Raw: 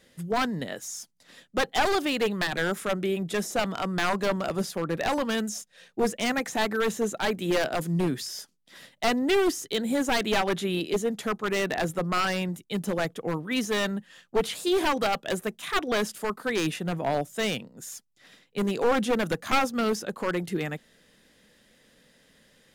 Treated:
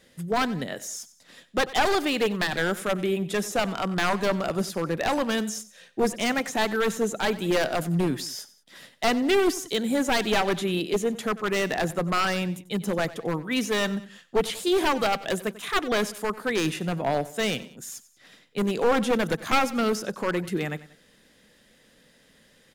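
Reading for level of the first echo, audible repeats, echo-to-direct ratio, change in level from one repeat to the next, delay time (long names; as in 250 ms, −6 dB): −17.5 dB, 2, −16.5 dB, −6.5 dB, 93 ms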